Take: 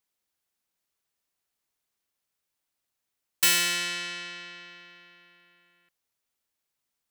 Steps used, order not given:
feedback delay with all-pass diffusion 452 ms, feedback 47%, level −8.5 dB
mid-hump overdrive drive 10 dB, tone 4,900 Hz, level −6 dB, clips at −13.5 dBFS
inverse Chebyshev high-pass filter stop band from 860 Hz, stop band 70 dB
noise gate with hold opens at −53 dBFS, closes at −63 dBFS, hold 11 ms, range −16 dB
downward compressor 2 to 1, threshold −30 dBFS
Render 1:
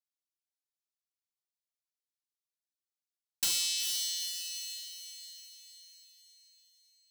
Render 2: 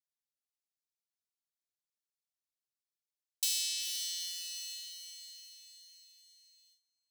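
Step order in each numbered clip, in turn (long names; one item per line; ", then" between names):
inverse Chebyshev high-pass filter, then noise gate with hold, then feedback delay with all-pass diffusion, then mid-hump overdrive, then downward compressor
mid-hump overdrive, then feedback delay with all-pass diffusion, then downward compressor, then inverse Chebyshev high-pass filter, then noise gate with hold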